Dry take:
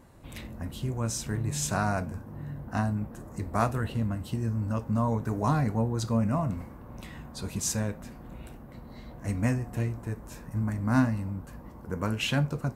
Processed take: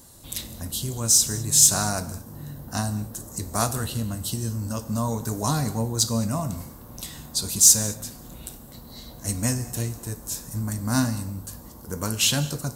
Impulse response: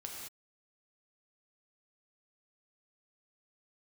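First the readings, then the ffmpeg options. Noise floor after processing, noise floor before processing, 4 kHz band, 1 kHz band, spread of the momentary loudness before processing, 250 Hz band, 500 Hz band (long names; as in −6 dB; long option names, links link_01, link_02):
−44 dBFS, −46 dBFS, +13.0 dB, +1.0 dB, 18 LU, +0.5 dB, +1.0 dB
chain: -filter_complex "[0:a]aexciter=amount=3.3:drive=9.7:freq=3400,asplit=2[link_01][link_02];[1:a]atrim=start_sample=2205[link_03];[link_02][link_03]afir=irnorm=-1:irlink=0,volume=-8.5dB[link_04];[link_01][link_04]amix=inputs=2:normalize=0,volume=-1dB"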